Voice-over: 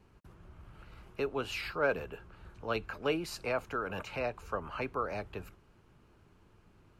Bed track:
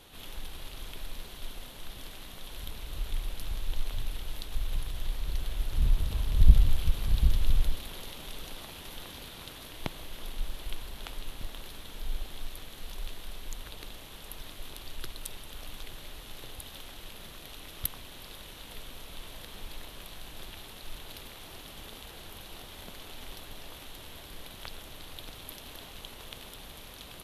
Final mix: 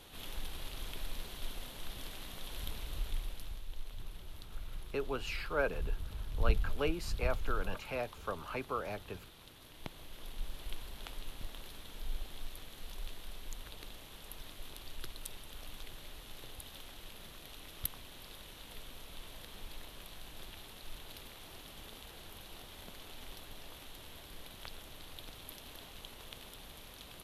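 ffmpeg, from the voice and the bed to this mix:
-filter_complex "[0:a]adelay=3750,volume=-3dB[a];[1:a]volume=6dB,afade=t=out:st=2.72:d=0.93:silence=0.281838,afade=t=in:st=9.54:d=1.24:silence=0.446684[b];[a][b]amix=inputs=2:normalize=0"

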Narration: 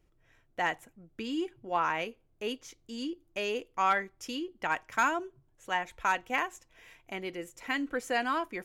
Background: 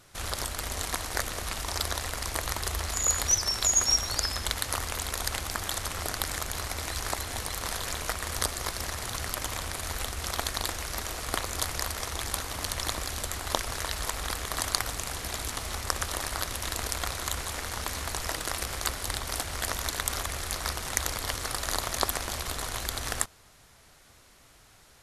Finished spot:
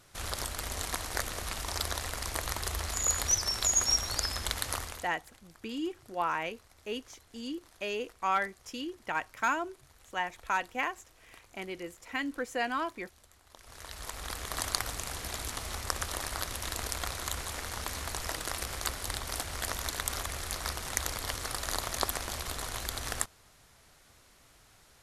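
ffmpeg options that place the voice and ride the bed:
-filter_complex "[0:a]adelay=4450,volume=-2dB[a];[1:a]volume=20.5dB,afade=t=out:st=4.71:d=0.4:silence=0.0630957,afade=t=in:st=13.56:d=1.03:silence=0.0668344[b];[a][b]amix=inputs=2:normalize=0"

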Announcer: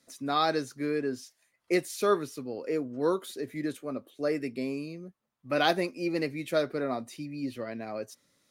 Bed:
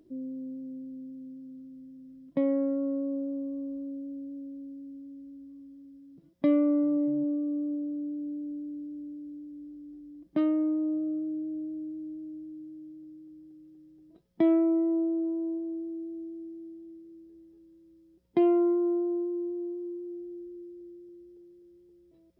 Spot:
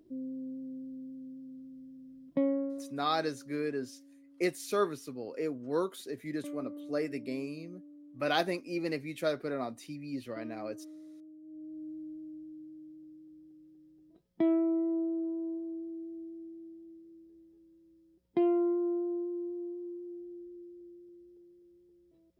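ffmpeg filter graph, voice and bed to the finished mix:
-filter_complex "[0:a]adelay=2700,volume=-4dB[a];[1:a]volume=12.5dB,afade=t=out:st=2.42:d=0.48:silence=0.141254,afade=t=in:st=11.41:d=0.51:silence=0.188365[b];[a][b]amix=inputs=2:normalize=0"

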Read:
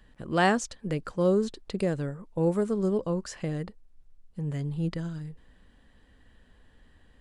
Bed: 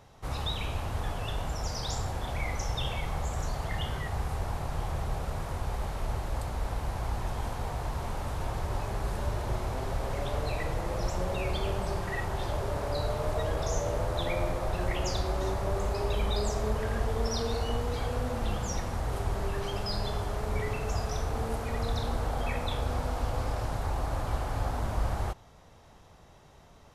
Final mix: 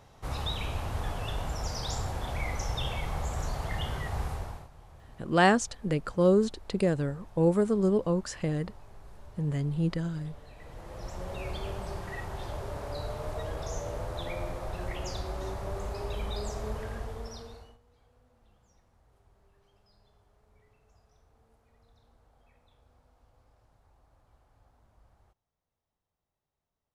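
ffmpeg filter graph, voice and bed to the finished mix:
-filter_complex "[0:a]adelay=5000,volume=1.5dB[a];[1:a]volume=14dB,afade=t=out:st=4.24:d=0.45:silence=0.105925,afade=t=in:st=10.55:d=0.91:silence=0.188365,afade=t=out:st=16.75:d=1.03:silence=0.0398107[b];[a][b]amix=inputs=2:normalize=0"

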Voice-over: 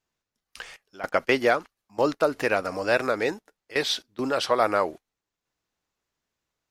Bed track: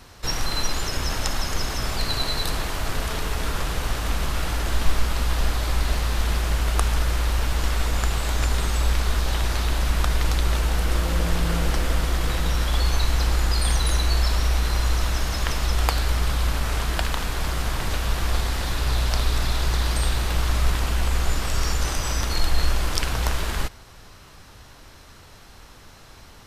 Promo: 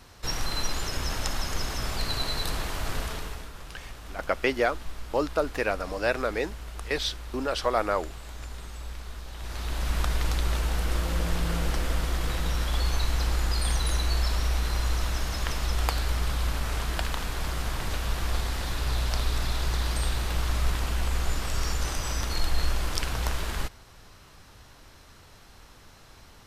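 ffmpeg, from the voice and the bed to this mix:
-filter_complex "[0:a]adelay=3150,volume=-3.5dB[a];[1:a]volume=7.5dB,afade=t=out:st=2.97:d=0.52:silence=0.237137,afade=t=in:st=9.35:d=0.61:silence=0.251189[b];[a][b]amix=inputs=2:normalize=0"

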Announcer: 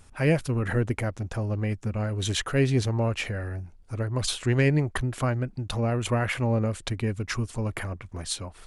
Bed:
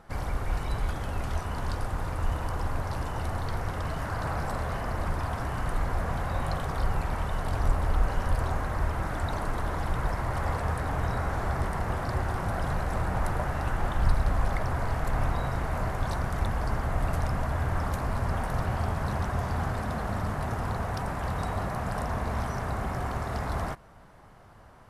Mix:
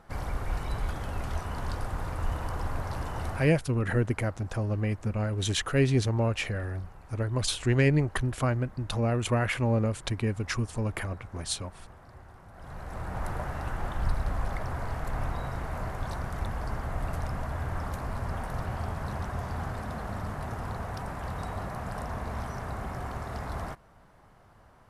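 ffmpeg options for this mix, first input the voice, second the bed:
-filter_complex "[0:a]adelay=3200,volume=-1dB[a];[1:a]volume=14.5dB,afade=t=out:st=3.3:d=0.23:silence=0.112202,afade=t=in:st=12.53:d=0.77:silence=0.149624[b];[a][b]amix=inputs=2:normalize=0"

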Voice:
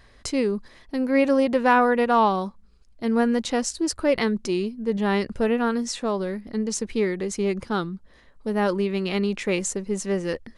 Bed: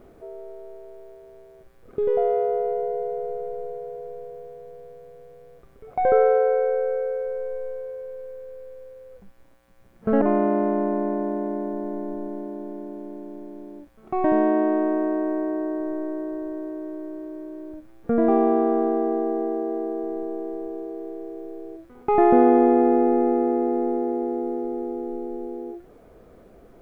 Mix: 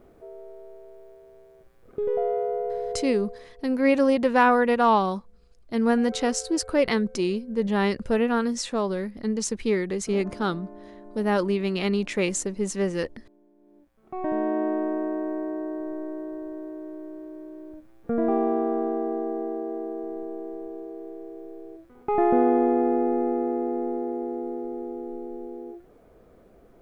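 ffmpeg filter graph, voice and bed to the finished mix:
-filter_complex "[0:a]adelay=2700,volume=-0.5dB[a];[1:a]volume=13dB,afade=t=out:st=2.98:d=0.51:silence=0.133352,afade=t=in:st=13.57:d=1.09:silence=0.141254[b];[a][b]amix=inputs=2:normalize=0"

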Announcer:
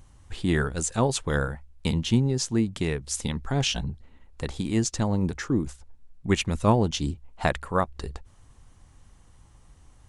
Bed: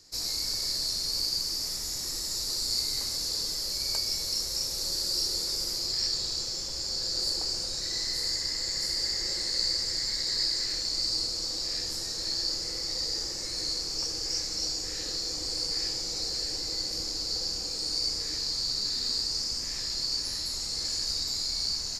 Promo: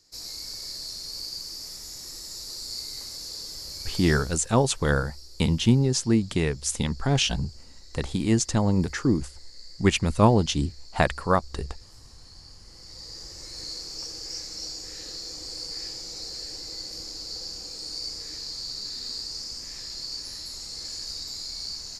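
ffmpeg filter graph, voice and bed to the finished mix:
-filter_complex "[0:a]adelay=3550,volume=2.5dB[a];[1:a]volume=9.5dB,afade=t=out:st=4.09:d=0.33:silence=0.199526,afade=t=in:st=12.63:d=1.12:silence=0.16788[b];[a][b]amix=inputs=2:normalize=0"

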